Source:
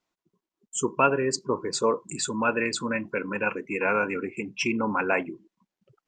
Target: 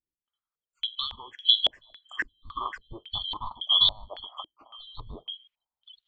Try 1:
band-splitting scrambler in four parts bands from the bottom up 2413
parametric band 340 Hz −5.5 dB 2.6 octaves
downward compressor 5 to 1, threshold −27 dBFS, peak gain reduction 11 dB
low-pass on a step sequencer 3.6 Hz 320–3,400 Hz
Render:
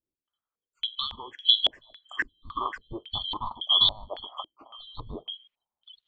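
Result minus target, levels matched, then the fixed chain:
250 Hz band +6.0 dB
band-splitting scrambler in four parts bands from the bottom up 2413
parametric band 340 Hz −13.5 dB 2.6 octaves
downward compressor 5 to 1, threshold −27 dBFS, peak gain reduction 10.5 dB
low-pass on a step sequencer 3.6 Hz 320–3,400 Hz

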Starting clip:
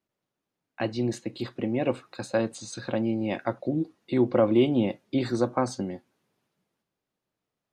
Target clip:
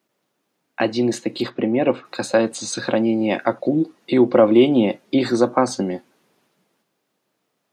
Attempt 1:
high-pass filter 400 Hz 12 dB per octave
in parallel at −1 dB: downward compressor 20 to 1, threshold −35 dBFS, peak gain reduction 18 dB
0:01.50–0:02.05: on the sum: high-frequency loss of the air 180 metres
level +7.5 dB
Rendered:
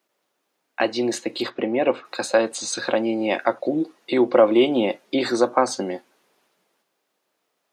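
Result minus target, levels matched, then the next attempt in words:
250 Hz band −2.5 dB
high-pass filter 190 Hz 12 dB per octave
in parallel at −1 dB: downward compressor 20 to 1, threshold −35 dBFS, peak gain reduction 19.5 dB
0:01.50–0:02.05: on the sum: high-frequency loss of the air 180 metres
level +7.5 dB

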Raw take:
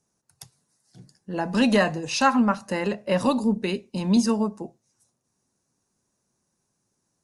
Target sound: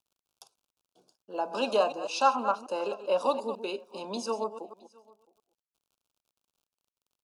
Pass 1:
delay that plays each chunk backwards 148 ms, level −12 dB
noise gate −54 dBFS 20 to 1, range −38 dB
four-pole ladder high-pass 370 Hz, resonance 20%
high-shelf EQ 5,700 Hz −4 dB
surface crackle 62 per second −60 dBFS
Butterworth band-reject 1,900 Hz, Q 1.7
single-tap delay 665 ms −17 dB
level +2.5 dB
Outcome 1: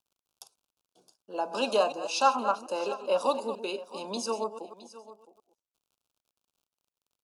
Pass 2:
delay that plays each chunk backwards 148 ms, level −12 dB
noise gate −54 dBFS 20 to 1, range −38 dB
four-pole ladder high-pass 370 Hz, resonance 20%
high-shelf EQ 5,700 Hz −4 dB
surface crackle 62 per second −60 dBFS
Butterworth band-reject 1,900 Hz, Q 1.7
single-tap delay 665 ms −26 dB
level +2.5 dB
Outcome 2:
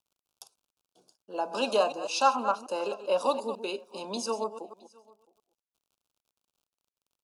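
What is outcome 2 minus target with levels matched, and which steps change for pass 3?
8,000 Hz band +4.5 dB
change: high-shelf EQ 5,700 Hz −12 dB

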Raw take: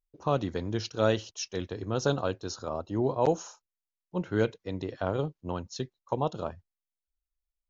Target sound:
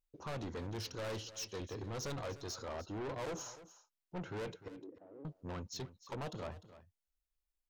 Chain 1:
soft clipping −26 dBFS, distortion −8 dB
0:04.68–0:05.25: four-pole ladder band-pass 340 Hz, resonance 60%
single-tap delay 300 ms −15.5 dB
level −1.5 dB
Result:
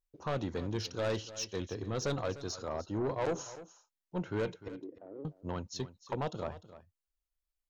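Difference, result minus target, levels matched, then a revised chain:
soft clipping: distortion −6 dB
soft clipping −37 dBFS, distortion −2 dB
0:04.68–0:05.25: four-pole ladder band-pass 340 Hz, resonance 60%
single-tap delay 300 ms −15.5 dB
level −1.5 dB

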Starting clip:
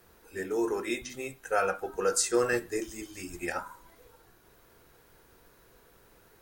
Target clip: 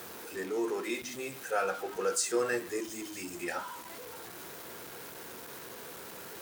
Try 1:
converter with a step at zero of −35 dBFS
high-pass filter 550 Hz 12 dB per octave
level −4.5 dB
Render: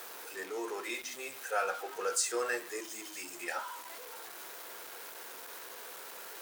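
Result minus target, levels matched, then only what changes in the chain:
125 Hz band −16.5 dB
change: high-pass filter 160 Hz 12 dB per octave

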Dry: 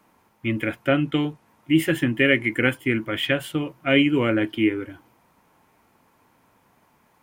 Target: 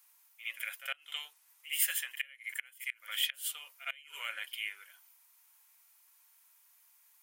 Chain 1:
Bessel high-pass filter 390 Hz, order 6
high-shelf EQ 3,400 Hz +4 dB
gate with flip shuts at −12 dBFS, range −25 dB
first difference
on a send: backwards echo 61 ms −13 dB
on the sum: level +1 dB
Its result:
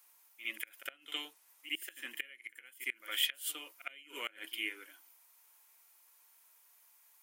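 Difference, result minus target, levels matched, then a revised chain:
500 Hz band +9.0 dB
Bessel high-pass filter 1,000 Hz, order 6
high-shelf EQ 3,400 Hz +4 dB
gate with flip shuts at −12 dBFS, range −25 dB
first difference
on a send: backwards echo 61 ms −13 dB
on the sum: level +1 dB

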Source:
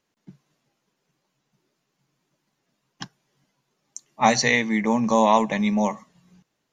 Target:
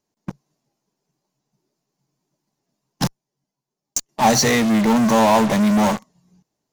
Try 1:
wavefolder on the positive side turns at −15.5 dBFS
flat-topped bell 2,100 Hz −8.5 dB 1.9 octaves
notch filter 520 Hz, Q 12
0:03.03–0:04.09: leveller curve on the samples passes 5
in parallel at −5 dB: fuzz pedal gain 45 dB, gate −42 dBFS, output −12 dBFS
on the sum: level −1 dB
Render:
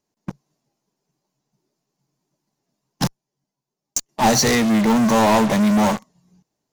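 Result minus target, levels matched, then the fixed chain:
wavefolder on the positive side: distortion +27 dB
wavefolder on the positive side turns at −7 dBFS
flat-topped bell 2,100 Hz −8.5 dB 1.9 octaves
notch filter 520 Hz, Q 12
0:03.03–0:04.09: leveller curve on the samples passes 5
in parallel at −5 dB: fuzz pedal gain 45 dB, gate −42 dBFS, output −12 dBFS
on the sum: level −1 dB

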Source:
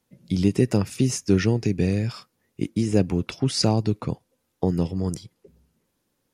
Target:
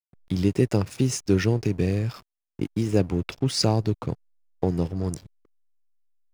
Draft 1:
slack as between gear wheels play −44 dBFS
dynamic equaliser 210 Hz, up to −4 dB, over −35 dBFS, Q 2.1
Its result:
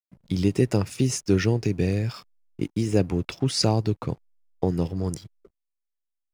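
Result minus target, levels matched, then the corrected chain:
slack as between gear wheels: distortion −8 dB
slack as between gear wheels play −35 dBFS
dynamic equaliser 210 Hz, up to −4 dB, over −35 dBFS, Q 2.1

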